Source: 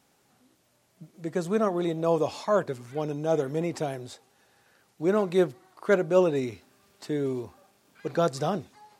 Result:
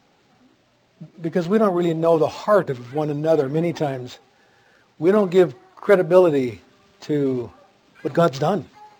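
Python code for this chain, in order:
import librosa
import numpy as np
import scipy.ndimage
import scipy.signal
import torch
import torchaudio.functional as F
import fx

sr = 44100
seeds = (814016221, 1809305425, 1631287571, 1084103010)

y = fx.spec_quant(x, sr, step_db=15)
y = np.interp(np.arange(len(y)), np.arange(len(y))[::4], y[::4])
y = y * librosa.db_to_amplitude(8.0)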